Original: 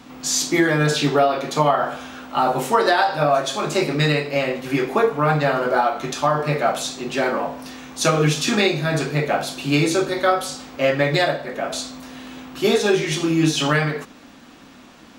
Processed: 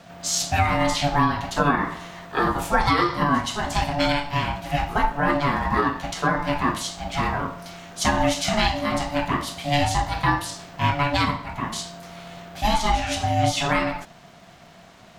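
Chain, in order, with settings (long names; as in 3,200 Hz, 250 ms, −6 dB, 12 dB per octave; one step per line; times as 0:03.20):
ring modulation 430 Hz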